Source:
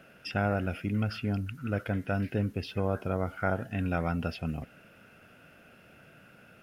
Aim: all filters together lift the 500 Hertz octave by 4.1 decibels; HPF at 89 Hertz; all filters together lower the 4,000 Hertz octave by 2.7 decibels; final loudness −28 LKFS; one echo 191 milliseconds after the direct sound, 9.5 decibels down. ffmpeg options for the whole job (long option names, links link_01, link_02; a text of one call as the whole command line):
ffmpeg -i in.wav -af "highpass=89,equalizer=frequency=500:width_type=o:gain=5,equalizer=frequency=4000:width_type=o:gain=-4,aecho=1:1:191:0.335,volume=2.5dB" out.wav